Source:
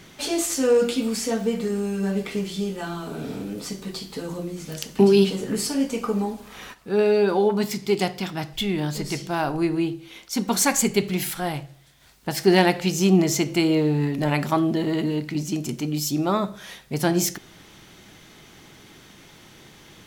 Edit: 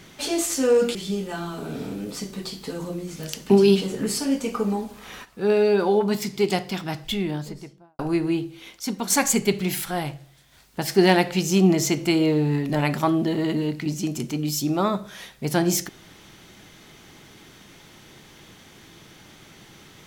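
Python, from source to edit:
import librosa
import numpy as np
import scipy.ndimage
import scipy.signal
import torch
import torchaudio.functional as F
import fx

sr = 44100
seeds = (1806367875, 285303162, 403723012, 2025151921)

y = fx.studio_fade_out(x, sr, start_s=8.51, length_s=0.97)
y = fx.edit(y, sr, fx.cut(start_s=0.95, length_s=1.49),
    fx.fade_out_to(start_s=10.17, length_s=0.42, floor_db=-7.5), tone=tone)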